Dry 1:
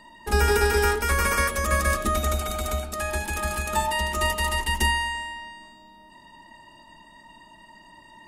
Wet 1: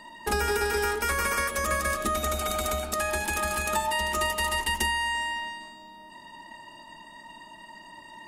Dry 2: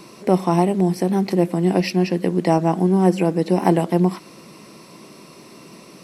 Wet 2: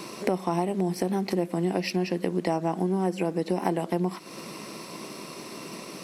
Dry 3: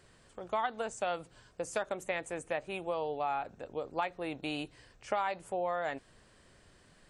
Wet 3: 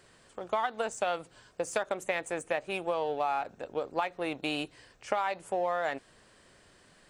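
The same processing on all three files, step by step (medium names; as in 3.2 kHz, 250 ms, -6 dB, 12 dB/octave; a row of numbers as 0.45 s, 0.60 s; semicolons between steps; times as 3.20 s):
in parallel at -7 dB: crossover distortion -42.5 dBFS; on the sum: bass shelf 150 Hz -9 dB; compression 4:1, threshold -29 dBFS; trim +3.5 dB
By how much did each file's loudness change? -3.0 LU, -9.5 LU, +3.5 LU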